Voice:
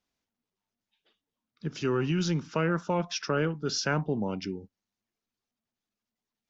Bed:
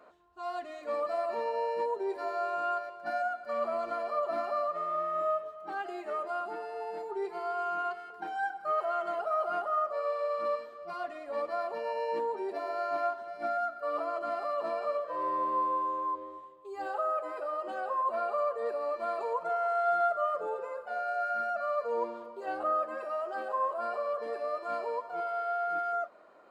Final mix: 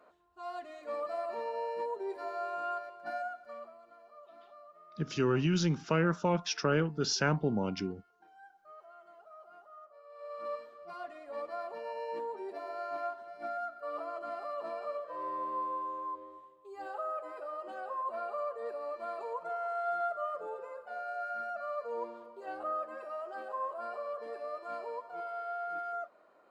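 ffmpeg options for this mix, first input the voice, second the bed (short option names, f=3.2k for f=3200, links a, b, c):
-filter_complex "[0:a]adelay=3350,volume=-1dB[a];[1:a]volume=12.5dB,afade=t=out:st=3.12:d=0.62:silence=0.11885,afade=t=in:st=10.09:d=0.47:silence=0.141254[b];[a][b]amix=inputs=2:normalize=0"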